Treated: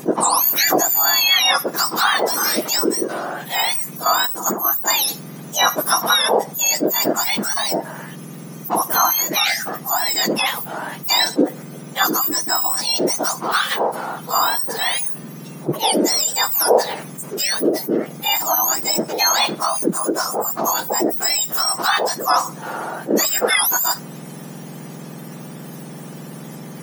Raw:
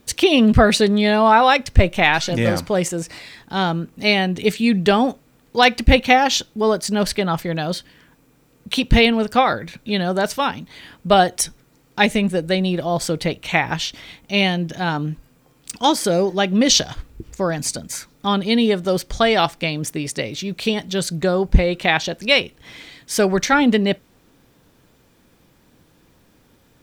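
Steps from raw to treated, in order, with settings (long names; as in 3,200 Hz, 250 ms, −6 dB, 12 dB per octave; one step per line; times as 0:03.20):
frequency axis turned over on the octave scale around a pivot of 1,700 Hz
0:03.97–0:05.04: noise gate −23 dBFS, range −7 dB
envelope flattener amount 50%
level −2.5 dB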